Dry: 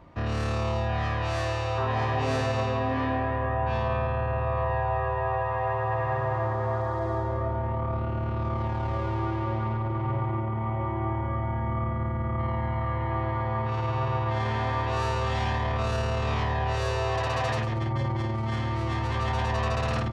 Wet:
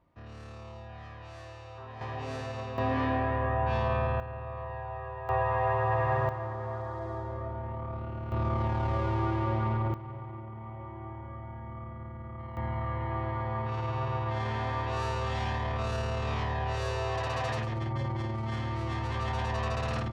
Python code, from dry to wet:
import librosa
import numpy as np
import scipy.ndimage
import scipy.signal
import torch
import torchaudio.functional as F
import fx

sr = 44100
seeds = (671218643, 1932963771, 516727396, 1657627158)

y = fx.gain(x, sr, db=fx.steps((0.0, -17.5), (2.01, -10.5), (2.78, -1.5), (4.2, -11.5), (5.29, 0.0), (6.29, -8.0), (8.32, -0.5), (9.94, -13.0), (12.57, -4.5)))